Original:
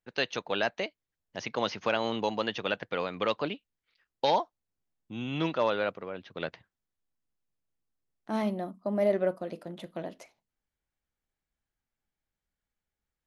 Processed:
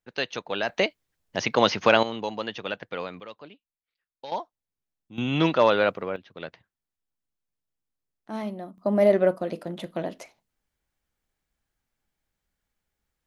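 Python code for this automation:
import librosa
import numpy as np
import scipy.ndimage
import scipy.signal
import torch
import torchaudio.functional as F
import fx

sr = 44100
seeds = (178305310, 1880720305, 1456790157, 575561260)

y = fx.gain(x, sr, db=fx.steps((0.0, 1.0), (0.69, 10.0), (2.03, -1.0), (3.2, -13.5), (4.32, -4.0), (5.18, 8.0), (6.16, -2.5), (8.78, 7.0)))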